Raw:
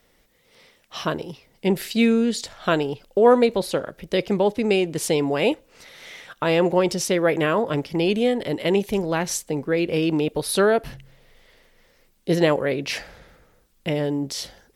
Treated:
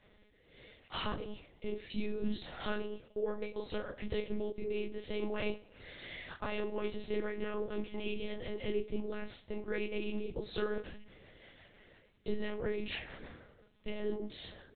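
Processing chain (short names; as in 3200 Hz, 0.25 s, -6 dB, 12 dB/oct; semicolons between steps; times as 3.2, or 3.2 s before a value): dynamic EQ 610 Hz, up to -5 dB, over -33 dBFS, Q 3.4; compressor 4:1, threshold -35 dBFS, peak gain reduction 19.5 dB; 13.96–14.42 transient shaper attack +11 dB, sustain -7 dB; rotary speaker horn 0.7 Hz, later 6 Hz, at 10.24; chorus voices 2, 0.98 Hz, delay 26 ms, depth 3 ms; doubler 35 ms -10.5 dB; frequency-shifting echo 96 ms, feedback 41%, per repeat +34 Hz, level -21 dB; monotone LPC vocoder at 8 kHz 210 Hz; gain +3.5 dB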